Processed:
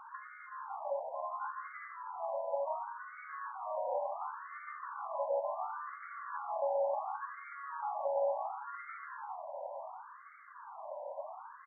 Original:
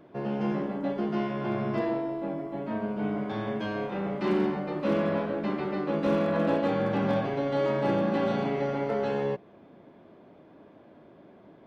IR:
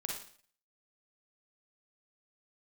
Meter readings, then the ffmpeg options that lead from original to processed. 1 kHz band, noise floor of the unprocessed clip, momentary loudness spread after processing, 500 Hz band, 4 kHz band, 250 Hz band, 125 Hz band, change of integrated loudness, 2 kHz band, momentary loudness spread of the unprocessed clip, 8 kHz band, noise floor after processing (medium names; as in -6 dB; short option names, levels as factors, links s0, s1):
-3.0 dB, -54 dBFS, 13 LU, -9.5 dB, under -40 dB, under -40 dB, under -40 dB, -10.5 dB, -9.0 dB, 6 LU, no reading, -52 dBFS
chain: -filter_complex "[0:a]alimiter=limit=0.0841:level=0:latency=1,highshelf=f=2600:t=q:w=3:g=11.5,acompressor=threshold=0.00631:ratio=6,bandreject=f=690:w=12,asplit=2[s0][s1];[s1]asplit=7[s2][s3][s4][s5][s6][s7][s8];[s2]adelay=162,afreqshift=83,volume=0.178[s9];[s3]adelay=324,afreqshift=166,volume=0.114[s10];[s4]adelay=486,afreqshift=249,volume=0.0724[s11];[s5]adelay=648,afreqshift=332,volume=0.0468[s12];[s6]adelay=810,afreqshift=415,volume=0.0299[s13];[s7]adelay=972,afreqshift=498,volume=0.0191[s14];[s8]adelay=1134,afreqshift=581,volume=0.0122[s15];[s9][s10][s11][s12][s13][s14][s15]amix=inputs=7:normalize=0[s16];[s0][s16]amix=inputs=2:normalize=0,afftfilt=real='re*between(b*sr/1024,720*pow(1600/720,0.5+0.5*sin(2*PI*0.7*pts/sr))/1.41,720*pow(1600/720,0.5+0.5*sin(2*PI*0.7*pts/sr))*1.41)':imag='im*between(b*sr/1024,720*pow(1600/720,0.5+0.5*sin(2*PI*0.7*pts/sr))/1.41,720*pow(1600/720,0.5+0.5*sin(2*PI*0.7*pts/sr))*1.41)':win_size=1024:overlap=0.75,volume=7.94"